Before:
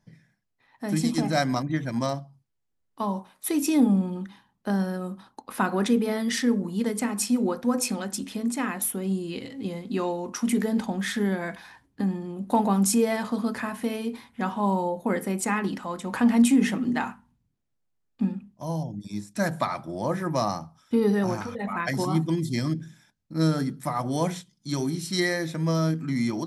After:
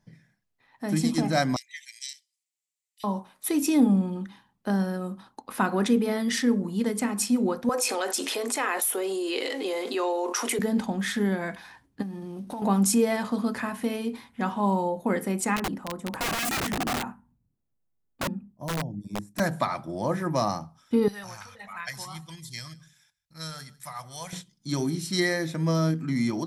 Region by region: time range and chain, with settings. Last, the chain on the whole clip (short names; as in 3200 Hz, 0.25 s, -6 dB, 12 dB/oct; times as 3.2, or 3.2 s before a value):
1.56–3.04 steep high-pass 1900 Hz 96 dB/oct + bell 7600 Hz +10.5 dB 0.53 oct
7.69–10.59 steep high-pass 360 Hz + fast leveller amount 70%
12.02–12.62 CVSD 64 kbps + notch 7300 Hz, Q 5.3 + compressor 5:1, threshold -33 dBFS
15.56–19.4 bell 3900 Hz -14 dB 2.7 oct + wrapped overs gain 23.5 dB
21.08–24.33 passive tone stack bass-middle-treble 10-0-10 + echo 0.15 s -22 dB
whole clip: dry